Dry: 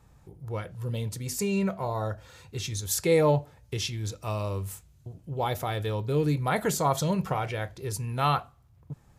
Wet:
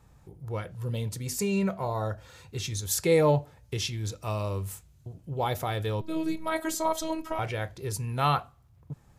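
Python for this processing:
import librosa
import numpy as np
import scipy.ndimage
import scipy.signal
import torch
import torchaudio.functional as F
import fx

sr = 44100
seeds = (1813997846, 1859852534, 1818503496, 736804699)

y = fx.robotise(x, sr, hz=319.0, at=(6.01, 7.39))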